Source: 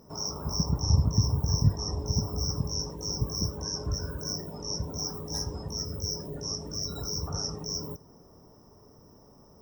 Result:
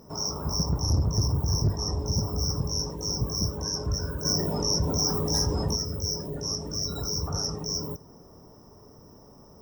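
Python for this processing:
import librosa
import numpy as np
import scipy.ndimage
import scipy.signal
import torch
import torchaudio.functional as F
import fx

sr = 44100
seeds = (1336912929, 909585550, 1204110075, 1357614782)

y = 10.0 ** (-22.5 / 20.0) * np.tanh(x / 10.0 ** (-22.5 / 20.0))
y = fx.env_flatten(y, sr, amount_pct=50, at=(4.24, 5.75), fade=0.02)
y = F.gain(torch.from_numpy(y), 4.0).numpy()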